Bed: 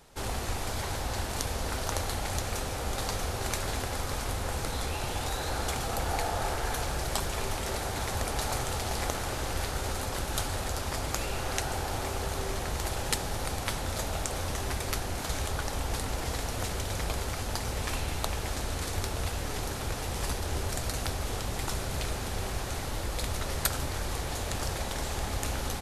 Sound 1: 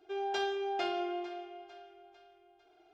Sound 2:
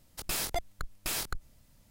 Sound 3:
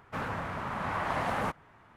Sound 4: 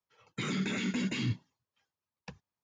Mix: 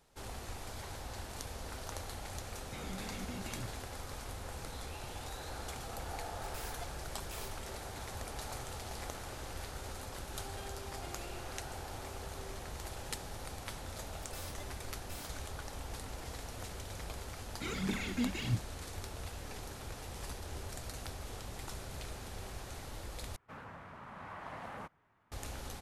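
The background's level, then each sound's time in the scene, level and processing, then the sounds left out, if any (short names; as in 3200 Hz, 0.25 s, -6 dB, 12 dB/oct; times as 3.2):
bed -11.5 dB
2.34 add 4 -13 dB
6.25 add 2 -15.5 dB
10.23 add 1 -17 dB
14.04 add 2 -14 dB + robotiser 294 Hz
17.23 add 4 -7 dB + phaser 1.5 Hz, delay 4.3 ms, feedback 68%
23.36 replace with 3 -14.5 dB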